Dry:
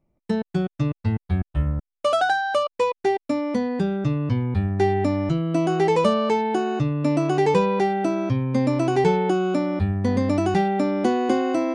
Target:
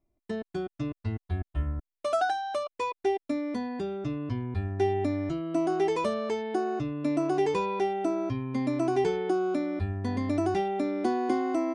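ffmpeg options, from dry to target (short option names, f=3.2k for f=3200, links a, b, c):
-af "aecho=1:1:2.9:0.64,volume=-8.5dB"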